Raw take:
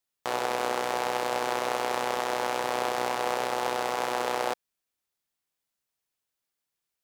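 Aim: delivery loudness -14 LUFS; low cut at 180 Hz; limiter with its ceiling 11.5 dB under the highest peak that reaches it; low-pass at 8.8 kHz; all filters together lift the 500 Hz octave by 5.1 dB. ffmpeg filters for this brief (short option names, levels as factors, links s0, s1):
-af "highpass=180,lowpass=8800,equalizer=f=500:t=o:g=6,volume=10,alimiter=limit=0.75:level=0:latency=1"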